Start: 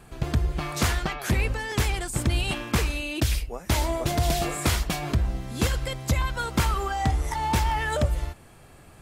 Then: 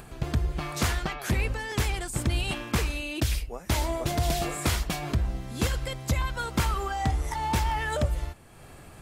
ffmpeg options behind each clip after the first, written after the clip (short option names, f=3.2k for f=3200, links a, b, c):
-af "acompressor=mode=upward:threshold=-37dB:ratio=2.5,volume=-2.5dB"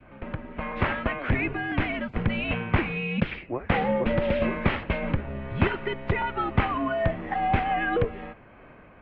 -af "dynaudnorm=f=120:g=13:m=8.5dB,adynamicequalizer=threshold=0.0158:dfrequency=1200:dqfactor=0.71:tfrequency=1200:tqfactor=0.71:attack=5:release=100:ratio=0.375:range=3:mode=cutabove:tftype=bell,highpass=f=170:t=q:w=0.5412,highpass=f=170:t=q:w=1.307,lowpass=f=2.7k:t=q:w=0.5176,lowpass=f=2.7k:t=q:w=0.7071,lowpass=f=2.7k:t=q:w=1.932,afreqshift=-120"